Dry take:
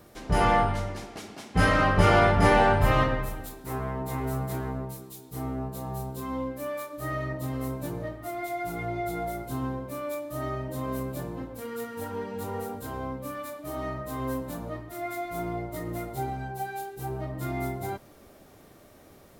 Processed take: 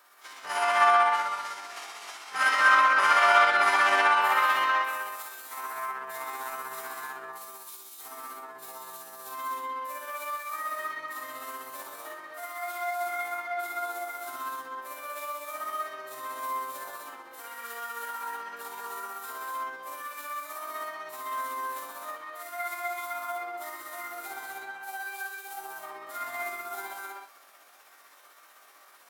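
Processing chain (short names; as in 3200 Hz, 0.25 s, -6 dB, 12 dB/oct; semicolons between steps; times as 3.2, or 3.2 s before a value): resonant high-pass 1200 Hz, resonance Q 1.6; non-linear reverb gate 0.23 s flat, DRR -3.5 dB; granular stretch 1.5×, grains 0.127 s; gain -1.5 dB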